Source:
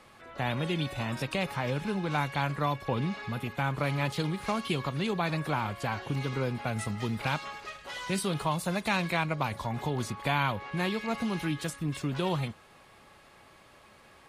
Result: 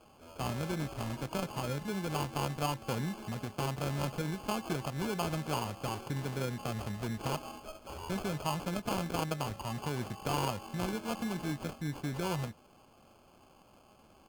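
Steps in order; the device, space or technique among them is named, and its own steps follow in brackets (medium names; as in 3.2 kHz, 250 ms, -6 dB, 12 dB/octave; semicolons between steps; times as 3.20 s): crushed at another speed (playback speed 0.8×; sample-and-hold 29×; playback speed 1.25×); trim -4.5 dB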